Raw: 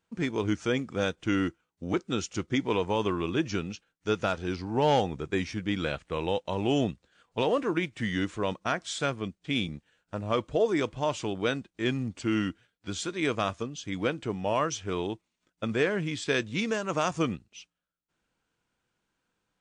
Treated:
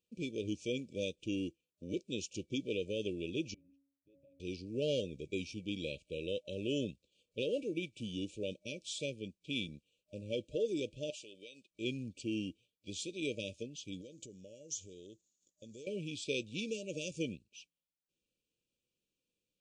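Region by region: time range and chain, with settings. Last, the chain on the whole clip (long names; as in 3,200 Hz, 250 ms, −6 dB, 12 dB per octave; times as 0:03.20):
0:03.54–0:04.40: resonances in every octave C#, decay 0.56 s + downward compressor, threshold −52 dBFS
0:11.10–0:11.71: high-pass filter 1,200 Hz 6 dB per octave + downward compressor 5 to 1, threshold −38 dBFS
0:14.01–0:15.87: parametric band 2,500 Hz −12.5 dB 0.42 octaves + downward compressor 4 to 1, threshold −41 dBFS + low-pass with resonance 6,900 Hz, resonance Q 9.8
whole clip: brick-wall band-stop 610–2,300 Hz; low-shelf EQ 300 Hz −6 dB; level −6.5 dB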